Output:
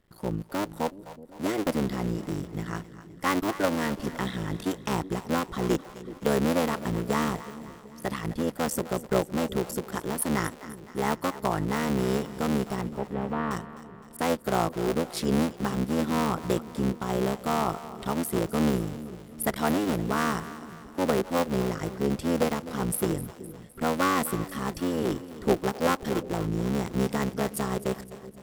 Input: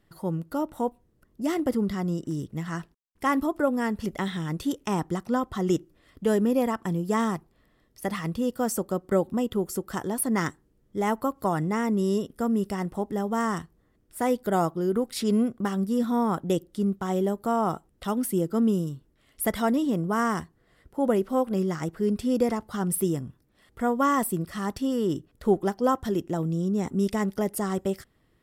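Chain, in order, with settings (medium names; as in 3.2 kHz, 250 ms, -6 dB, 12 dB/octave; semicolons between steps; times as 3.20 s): cycle switcher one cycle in 3, muted; 12.81–13.51 s: distance through air 480 m; two-band feedback delay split 490 Hz, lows 374 ms, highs 257 ms, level -14.5 dB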